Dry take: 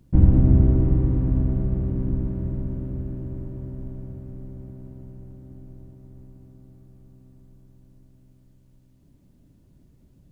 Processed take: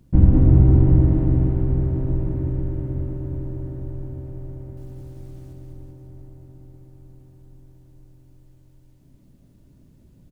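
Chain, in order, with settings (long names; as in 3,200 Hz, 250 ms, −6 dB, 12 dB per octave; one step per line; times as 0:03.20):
0:04.77–0:05.53: hold until the input has moved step −58 dBFS
bouncing-ball delay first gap 200 ms, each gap 0.9×, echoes 5
level +1.5 dB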